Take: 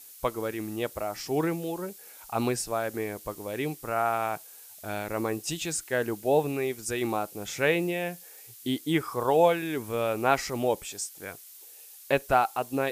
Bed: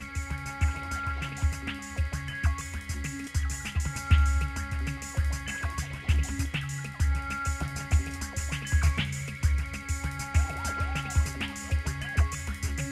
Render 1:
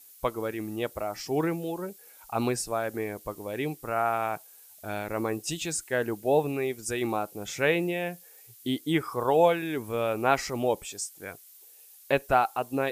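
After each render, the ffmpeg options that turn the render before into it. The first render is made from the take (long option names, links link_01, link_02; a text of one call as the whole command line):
ffmpeg -i in.wav -af "afftdn=noise_reduction=6:noise_floor=-49" out.wav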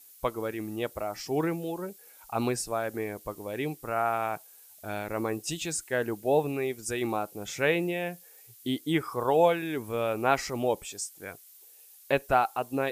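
ffmpeg -i in.wav -af "volume=-1dB" out.wav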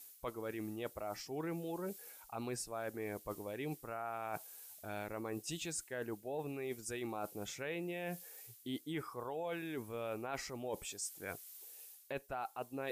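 ffmpeg -i in.wav -af "alimiter=limit=-19dB:level=0:latency=1:release=460,areverse,acompressor=threshold=-39dB:ratio=6,areverse" out.wav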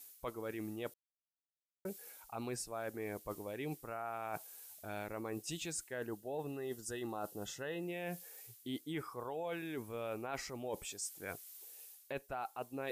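ffmpeg -i in.wav -filter_complex "[0:a]asettb=1/sr,asplit=3[link_01][link_02][link_03];[link_01]atrim=end=6.074[link_04];[link_02]atrim=start=6.07:end=7.83,asetpts=PTS-STARTPTS,afade=type=in:duration=0.004:curve=qsin,afade=type=out:start_time=1.756:duration=0.004:curve=qsin,asuperstop=centerf=2300:order=8:qfactor=4.3[link_05];[link_03]atrim=start=7.826[link_06];[link_04][link_05]acrossfade=duration=0.004:curve1=hsin:curve2=qsin[link_07];[link_07][link_06]acrossfade=duration=0.004:curve1=qsin:curve2=hsin,asplit=3[link_08][link_09][link_10];[link_08]atrim=end=0.94,asetpts=PTS-STARTPTS,afade=type=out:start_time=0.936:duration=0.004:curve=hsin[link_11];[link_09]atrim=start=0.94:end=1.85,asetpts=PTS-STARTPTS,volume=0[link_12];[link_10]atrim=start=1.85,asetpts=PTS-STARTPTS,afade=type=in:duration=0.004:curve=hsin[link_13];[link_11][link_12][link_13]concat=n=3:v=0:a=1" out.wav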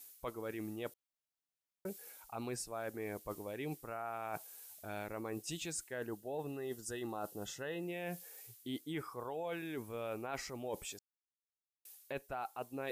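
ffmpeg -i in.wav -filter_complex "[0:a]asplit=3[link_01][link_02][link_03];[link_01]atrim=end=10.99,asetpts=PTS-STARTPTS,afade=type=out:start_time=10.986:duration=0.004:curve=hsin[link_04];[link_02]atrim=start=10.99:end=11.85,asetpts=PTS-STARTPTS,volume=0[link_05];[link_03]atrim=start=11.85,asetpts=PTS-STARTPTS,afade=type=in:duration=0.004:curve=hsin[link_06];[link_04][link_05][link_06]concat=n=3:v=0:a=1" out.wav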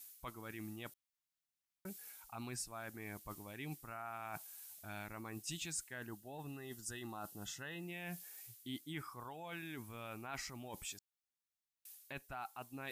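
ffmpeg -i in.wav -af "equalizer=frequency=480:width=1.4:gain=-14.5" out.wav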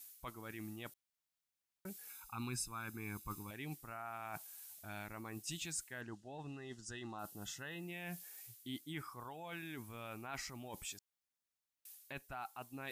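ffmpeg -i in.wav -filter_complex "[0:a]asettb=1/sr,asplit=3[link_01][link_02][link_03];[link_01]atrim=end=2.094[link_04];[link_02]atrim=start=2.09:end=3.51,asetpts=PTS-STARTPTS,afade=type=in:duration=0.004:curve=qsin,afade=type=out:start_time=1.416:duration=0.004:curve=qsin,aecho=1:1:0.8:0.86,atrim=end_sample=62622[link_05];[link_03]atrim=start=3.506[link_06];[link_04][link_05]acrossfade=duration=0.004:curve1=hsin:curve2=qsin[link_07];[link_07][link_06]acrossfade=duration=0.004:curve1=qsin:curve2=hsin,asettb=1/sr,asplit=3[link_08][link_09][link_10];[link_08]atrim=end=6.014[link_11];[link_09]atrim=start=6.01:end=7.19,asetpts=PTS-STARTPTS,afade=type=in:duration=0.004:curve=qsin,afade=type=out:start_time=1.176:duration=0.004:curve=qsin,lowpass=frequency=7200:width=0.5412,lowpass=frequency=7200:width=1.3066[link_12];[link_10]atrim=start=7.186[link_13];[link_11][link_12]acrossfade=duration=0.004:curve1=hsin:curve2=qsin[link_14];[link_14][link_13]acrossfade=duration=0.004:curve1=qsin:curve2=hsin" out.wav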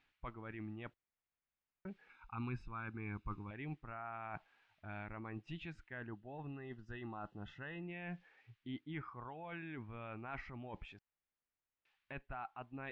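ffmpeg -i in.wav -af "lowpass=frequency=2600:width=0.5412,lowpass=frequency=2600:width=1.3066,lowshelf=frequency=63:gain=11.5" out.wav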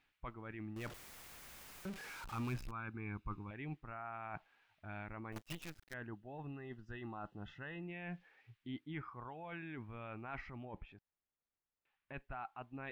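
ffmpeg -i in.wav -filter_complex "[0:a]asettb=1/sr,asplit=3[link_01][link_02][link_03];[link_01]atrim=end=0.764[link_04];[link_02]atrim=start=0.76:end=2.71,asetpts=PTS-STARTPTS,afade=type=in:duration=0.004:curve=qsin,afade=type=out:start_time=1.946:duration=0.004:curve=qsin,aeval=exprs='val(0)+0.5*0.00562*sgn(val(0))':channel_layout=same[link_05];[link_03]atrim=start=2.706[link_06];[link_04][link_05]acrossfade=duration=0.004:curve1=hsin:curve2=qsin[link_07];[link_07][link_06]acrossfade=duration=0.004:curve1=qsin:curve2=hsin,asettb=1/sr,asplit=3[link_08][link_09][link_10];[link_08]atrim=end=5.324[link_11];[link_09]atrim=start=5.32:end=5.94,asetpts=PTS-STARTPTS,afade=type=in:duration=0.004:curve=qsin,afade=type=out:start_time=0.616:duration=0.004:curve=qsin,acrusher=bits=8:dc=4:mix=0:aa=0.000001[link_12];[link_10]atrim=start=5.936[link_13];[link_11][link_12]acrossfade=duration=0.004:curve1=hsin:curve2=qsin[link_14];[link_14][link_13]acrossfade=duration=0.004:curve1=qsin:curve2=hsin,asettb=1/sr,asplit=3[link_15][link_16][link_17];[link_15]atrim=end=10.654[link_18];[link_16]atrim=start=10.65:end=12.14,asetpts=PTS-STARTPTS,afade=type=in:duration=0.004:curve=qsin,afade=type=out:start_time=1.486:duration=0.004:curve=qsin,lowpass=frequency=1400:poles=1[link_19];[link_17]atrim=start=12.136[link_20];[link_18][link_19]acrossfade=duration=0.004:curve1=hsin:curve2=qsin[link_21];[link_21][link_20]acrossfade=duration=0.004:curve1=qsin:curve2=hsin" out.wav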